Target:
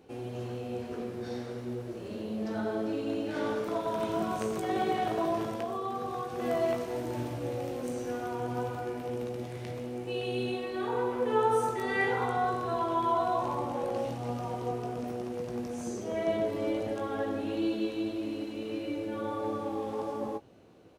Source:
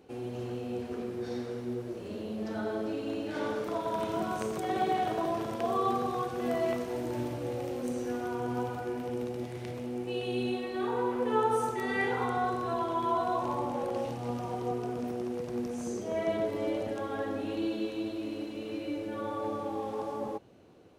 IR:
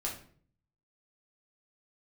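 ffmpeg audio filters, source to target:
-filter_complex "[0:a]asettb=1/sr,asplit=3[a][b][c];[a]atrim=end=5.474[d];[b]atrim=start=5.47:end=6.39,asetpts=PTS-STARTPTS,afade=t=in:d=0.004:c=qsin,afade=t=out:st=0.916:d=0.004:c=qsin,acompressor=threshold=-32dB:ratio=6[e];[c]atrim=start=6.386[f];[d][e]acrossfade=d=0.004:c1=hsin:c2=qsin[g];[g][f]acrossfade=d=0.004:c1=qsin:c2=hsin,asplit=2[h][i];[i]adelay=18,volume=-8.5dB[j];[h][j]amix=inputs=2:normalize=0"

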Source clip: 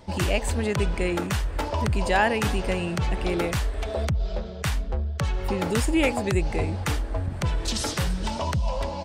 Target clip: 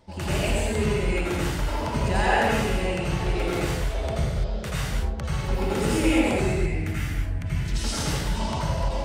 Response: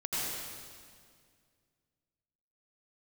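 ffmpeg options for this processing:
-filter_complex "[0:a]asettb=1/sr,asplit=3[a][b][c];[a]atrim=end=6.454[d];[b]atrim=start=6.45:end=7.75,asetpts=PTS-STARTPTS,afade=t=in:d=0.004:c=qsin,afade=t=out:st=1.296:d=0.004:c=qsin,equalizer=f=500:t=o:w=1:g=-10,equalizer=f=1k:t=o:w=1:g=-10,equalizer=f=2k:t=o:w=1:g=5,equalizer=f=4k:t=o:w=1:g=-7,equalizer=f=8k:t=o:w=1:g=-5[e];[c]atrim=start=7.746[f];[d][e]acrossfade=d=0.004:c1=hsin:c2=qsin[g];[g][f]acrossfade=d=0.004:c1=qsin:c2=hsin[h];[1:a]atrim=start_sample=2205,afade=t=out:st=0.4:d=0.01,atrim=end_sample=18081[i];[h][i]afir=irnorm=-1:irlink=0,volume=-5.5dB"

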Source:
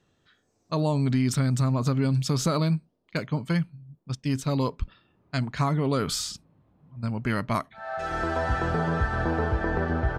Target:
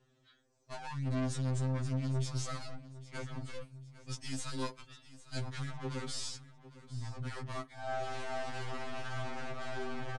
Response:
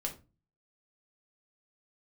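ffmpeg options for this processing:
-filter_complex "[0:a]asplit=3[a][b][c];[a]afade=t=out:st=3.6:d=0.02[d];[b]aemphasis=mode=production:type=riaa,afade=t=in:st=3.6:d=0.02,afade=t=out:st=5.39:d=0.02[e];[c]afade=t=in:st=5.39:d=0.02[f];[d][e][f]amix=inputs=3:normalize=0,aeval=exprs='(tanh(79.4*val(0)+0.5)-tanh(0.5))/79.4':c=same,asplit=2[g][h];[h]aecho=0:1:804|1608|2412:0.141|0.0494|0.0173[i];[g][i]amix=inputs=2:normalize=0,aresample=22050,aresample=44100,afftfilt=real='re*2.45*eq(mod(b,6),0)':imag='im*2.45*eq(mod(b,6),0)':win_size=2048:overlap=0.75,volume=1dB"

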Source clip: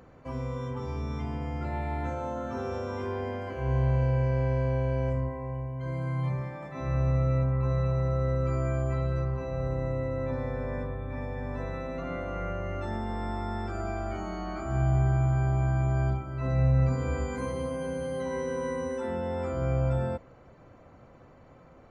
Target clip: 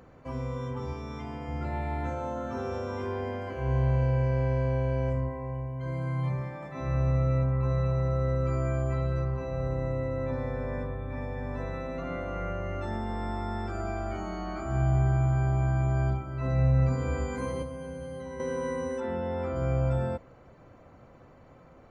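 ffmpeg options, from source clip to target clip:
-filter_complex "[0:a]asettb=1/sr,asplit=3[a][b][c];[a]atrim=end=0.934[d];[b]atrim=start=0.93:end=1.49,asetpts=PTS-STARTPTS,afade=t=in:d=0.004:c=qsin,afade=t=out:st=0.556:d=0.004:c=qsin,lowshelf=f=170:g=-9.5[e];[c]atrim=start=1.486[f];[d][e]acrossfade=d=0.004:c1=hsin:c2=qsin[g];[g][f]acrossfade=d=0.004:c1=qsin:c2=hsin,asettb=1/sr,asplit=3[h][i][j];[h]atrim=end=17.624[k];[i]atrim=start=17.62:end=18.4,asetpts=PTS-STARTPTS,afade=t=in:d=0.004:c=qsin,afade=t=out:st=0.776:d=0.004:c=qsin,acrossover=split=140[l][m];[m]acompressor=threshold=-38dB:ratio=5[n];[l][n]amix=inputs=2:normalize=0[o];[j]atrim=start=18.396[p];[k][o]acrossfade=d=0.004:c1=hsin:c2=qsin[q];[q][p]acrossfade=d=0.004:c1=qsin:c2=hsin,asettb=1/sr,asplit=3[r][s][t];[r]atrim=end=19.004[u];[s]atrim=start=19:end=19.56,asetpts=PTS-STARTPTS,afade=t=in:d=0.004:c=qsin,afade=t=out:st=0.556:d=0.004:c=qsin,lowpass=4.5k[v];[t]atrim=start=19.556[w];[u][v]acrossfade=d=0.004:c1=hsin:c2=qsin[x];[x][w]acrossfade=d=0.004:c1=qsin:c2=hsin"

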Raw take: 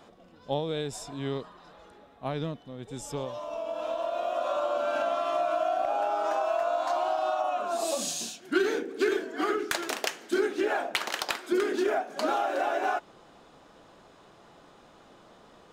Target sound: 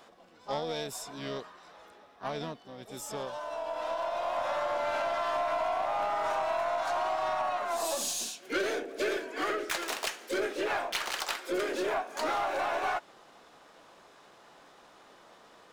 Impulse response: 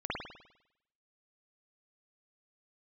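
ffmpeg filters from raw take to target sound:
-filter_complex "[0:a]asplit=3[a][b][c];[b]asetrate=52444,aresample=44100,atempo=0.840896,volume=-16dB[d];[c]asetrate=66075,aresample=44100,atempo=0.66742,volume=-7dB[e];[a][d][e]amix=inputs=3:normalize=0,lowshelf=f=300:g=-12,aeval=exprs='0.211*(cos(1*acos(clip(val(0)/0.211,-1,1)))-cos(1*PI/2))+0.00668*(cos(6*acos(clip(val(0)/0.211,-1,1)))-cos(6*PI/2))':c=same,asoftclip=type=tanh:threshold=-23.5dB"

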